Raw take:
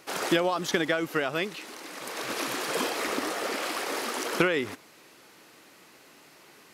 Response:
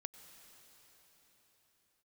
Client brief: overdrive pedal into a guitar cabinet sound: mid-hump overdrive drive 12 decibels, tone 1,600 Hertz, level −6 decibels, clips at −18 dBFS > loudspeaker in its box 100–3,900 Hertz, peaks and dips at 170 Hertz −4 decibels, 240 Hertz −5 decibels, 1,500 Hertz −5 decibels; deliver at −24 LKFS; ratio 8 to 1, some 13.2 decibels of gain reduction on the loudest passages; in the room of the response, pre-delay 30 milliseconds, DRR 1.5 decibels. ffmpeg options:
-filter_complex "[0:a]acompressor=threshold=-33dB:ratio=8,asplit=2[link_01][link_02];[1:a]atrim=start_sample=2205,adelay=30[link_03];[link_02][link_03]afir=irnorm=-1:irlink=0,volume=2.5dB[link_04];[link_01][link_04]amix=inputs=2:normalize=0,asplit=2[link_05][link_06];[link_06]highpass=frequency=720:poles=1,volume=12dB,asoftclip=type=tanh:threshold=-18dB[link_07];[link_05][link_07]amix=inputs=2:normalize=0,lowpass=frequency=1600:poles=1,volume=-6dB,highpass=100,equalizer=frequency=170:width_type=q:width=4:gain=-4,equalizer=frequency=240:width_type=q:width=4:gain=-5,equalizer=frequency=1500:width_type=q:width=4:gain=-5,lowpass=frequency=3900:width=0.5412,lowpass=frequency=3900:width=1.3066,volume=10.5dB"

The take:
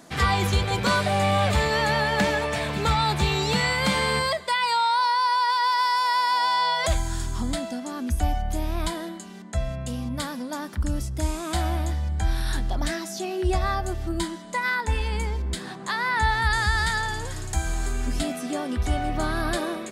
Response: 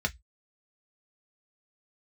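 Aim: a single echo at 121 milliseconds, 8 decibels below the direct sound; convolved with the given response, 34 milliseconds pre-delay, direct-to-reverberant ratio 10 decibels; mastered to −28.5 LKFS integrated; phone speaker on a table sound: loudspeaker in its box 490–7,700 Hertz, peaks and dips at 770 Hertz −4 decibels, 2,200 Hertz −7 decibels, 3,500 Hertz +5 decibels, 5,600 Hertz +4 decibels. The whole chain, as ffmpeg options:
-filter_complex "[0:a]aecho=1:1:121:0.398,asplit=2[link_01][link_02];[1:a]atrim=start_sample=2205,adelay=34[link_03];[link_02][link_03]afir=irnorm=-1:irlink=0,volume=-17dB[link_04];[link_01][link_04]amix=inputs=2:normalize=0,highpass=frequency=490:width=0.5412,highpass=frequency=490:width=1.3066,equalizer=frequency=770:width_type=q:width=4:gain=-4,equalizer=frequency=2200:width_type=q:width=4:gain=-7,equalizer=frequency=3500:width_type=q:width=4:gain=5,equalizer=frequency=5600:width_type=q:width=4:gain=4,lowpass=frequency=7700:width=0.5412,lowpass=frequency=7700:width=1.3066,volume=-3.5dB"

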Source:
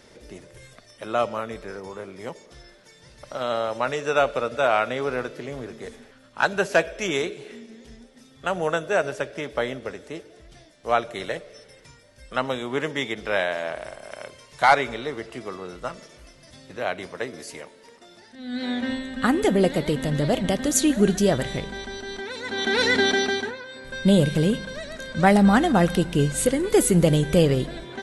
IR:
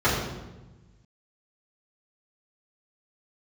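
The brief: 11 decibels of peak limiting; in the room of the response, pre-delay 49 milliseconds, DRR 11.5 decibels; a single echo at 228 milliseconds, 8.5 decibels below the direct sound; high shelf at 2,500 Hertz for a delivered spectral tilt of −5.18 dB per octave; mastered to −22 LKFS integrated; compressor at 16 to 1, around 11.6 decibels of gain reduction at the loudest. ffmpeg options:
-filter_complex "[0:a]highshelf=frequency=2500:gain=-9,acompressor=threshold=-24dB:ratio=16,alimiter=limit=-23.5dB:level=0:latency=1,aecho=1:1:228:0.376,asplit=2[link_01][link_02];[1:a]atrim=start_sample=2205,adelay=49[link_03];[link_02][link_03]afir=irnorm=-1:irlink=0,volume=-29.5dB[link_04];[link_01][link_04]amix=inputs=2:normalize=0,volume=11.5dB"

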